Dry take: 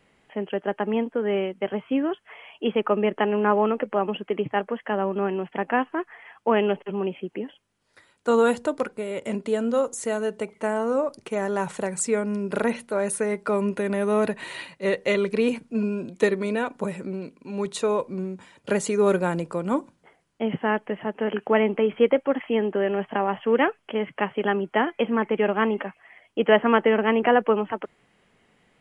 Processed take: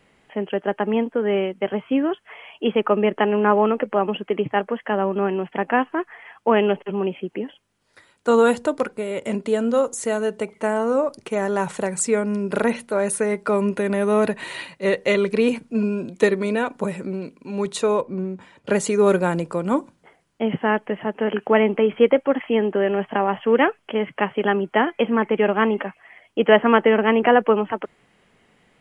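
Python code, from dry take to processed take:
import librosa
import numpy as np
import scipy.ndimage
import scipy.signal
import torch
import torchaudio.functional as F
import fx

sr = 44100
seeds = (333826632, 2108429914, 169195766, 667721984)

y = fx.lowpass(x, sr, hz=fx.line((18.0, 1600.0), (18.72, 3900.0)), slope=6, at=(18.0, 18.72), fade=0.02)
y = y * librosa.db_to_amplitude(3.5)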